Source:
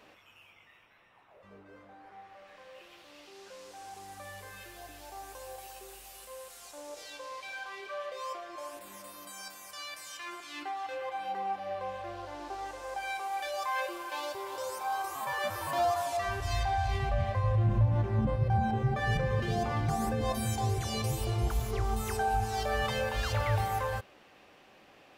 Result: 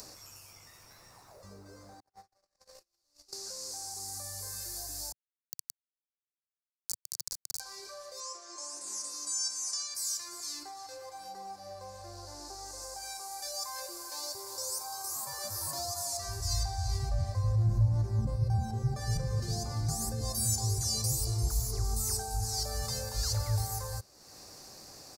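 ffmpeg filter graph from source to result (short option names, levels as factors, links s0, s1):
-filter_complex "[0:a]asettb=1/sr,asplit=3[s0][s1][s2];[s0]atrim=end=2.004[s3];[s1]atrim=start=2:end=3.33,asetpts=PTS-STARTPTS,afade=t=in:d=0.004:c=qsin,afade=t=out:st=1.326:d=0.004:c=qsin,asubboost=boost=12:cutoff=50,agate=range=0.00355:threshold=0.00355:ratio=16:release=100:detection=peak[s4];[s2]atrim=start=3.326[s5];[s3][s4]acrossfade=d=0.004:c1=hsin:c2=qsin[s6];[s6][s5]acrossfade=d=0.004:c1=qsin:c2=hsin,asettb=1/sr,asplit=3[s7][s8][s9];[s7]atrim=end=5.124[s10];[s8]atrim=start=5.12:end=7.6,asetpts=PTS-STARTPTS,afade=t=in:d=0.004:c=qsin,afade=t=out:st=2.476:d=0.004:c=qsin,bandreject=f=94.01:t=h:w=4,bandreject=f=188.02:t=h:w=4,bandreject=f=282.03:t=h:w=4,acrusher=bits=3:dc=4:mix=0:aa=0.000001[s11];[s9]atrim=start=7.596[s12];[s10][s11]acrossfade=d=0.004:c1=hsin:c2=qsin[s13];[s13][s12]acrossfade=d=0.004:c1=qsin:c2=hsin,asettb=1/sr,asplit=3[s14][s15][s16];[s14]atrim=end=8.204[s17];[s15]atrim=start=8.2:end=9.95,asetpts=PTS-STARTPTS,afade=t=in:d=0.004:c=qsin,afade=t=out:st=1.746:d=0.004:c=qsin,highpass=f=250:w=0.5412,highpass=f=250:w=1.3066,equalizer=f=640:t=q:w=4:g=-9,equalizer=f=2700:t=q:w=4:g=3,equalizer=f=4400:t=q:w=4:g=-4,equalizer=f=6400:t=q:w=4:g=4,lowpass=f=8100:w=0.5412,lowpass=f=8100:w=1.3066,asplit=2[s18][s19];[s19]adelay=48,volume=0.299[s20];[s18][s20]amix=inputs=2:normalize=0,atrim=end_sample=77175[s21];[s16]atrim=start=9.946[s22];[s17][s21]acrossfade=d=0.004:c1=hsin:c2=qsin[s23];[s23][s22]acrossfade=d=0.004:c1=qsin:c2=hsin,acompressor=mode=upward:threshold=0.02:ratio=2.5,firequalizer=gain_entry='entry(110,0);entry(210,-8);entry(350,-8);entry(530,-9);entry(1100,-10);entry(3100,-20);entry(4500,10);entry(6900,12);entry(14000,8)':delay=0.05:min_phase=1,acrossover=split=340|3000[s24][s25][s26];[s25]acompressor=threshold=0.0112:ratio=6[s27];[s24][s27][s26]amix=inputs=3:normalize=0"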